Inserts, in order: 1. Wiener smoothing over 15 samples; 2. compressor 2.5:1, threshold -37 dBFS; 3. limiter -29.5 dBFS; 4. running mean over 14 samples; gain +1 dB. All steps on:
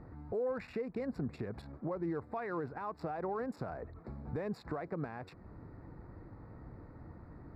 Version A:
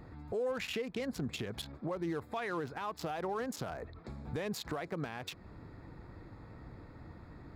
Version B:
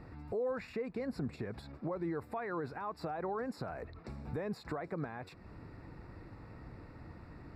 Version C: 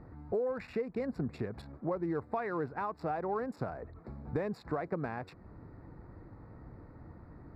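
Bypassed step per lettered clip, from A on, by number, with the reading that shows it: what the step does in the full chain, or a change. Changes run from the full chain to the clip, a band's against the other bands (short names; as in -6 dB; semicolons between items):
4, 4 kHz band +17.0 dB; 1, 4 kHz band +5.0 dB; 3, crest factor change +4.0 dB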